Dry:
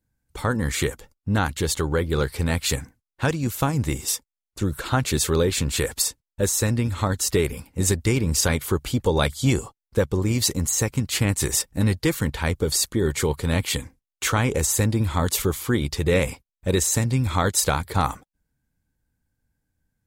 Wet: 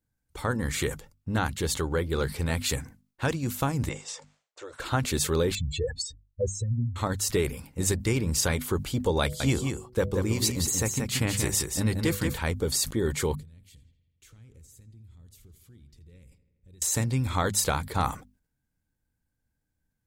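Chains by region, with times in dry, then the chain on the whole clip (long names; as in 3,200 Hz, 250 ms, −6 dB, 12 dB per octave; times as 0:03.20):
0:03.89–0:04.80: de-essing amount 20% + elliptic band-pass filter 520–7,600 Hz + spectral tilt −2.5 dB per octave
0:05.55–0:06.96: expanding power law on the bin magnitudes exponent 3.3 + low-pass filter 4,800 Hz + dynamic equaliser 910 Hz, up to +3 dB, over −38 dBFS, Q 0.95
0:09.22–0:12.39: hum removal 123.6 Hz, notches 5 + single-tap delay 181 ms −5.5 dB
0:13.35–0:16.82: guitar amp tone stack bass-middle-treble 10-0-1 + downward compressor 2.5 to 1, threshold −49 dBFS + feedback echo with a low-pass in the loop 83 ms, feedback 74%, low-pass 4,400 Hz, level −16 dB
whole clip: mains-hum notches 50/100/150/200/250 Hz; level that may fall only so fast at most 150 dB per second; level −4.5 dB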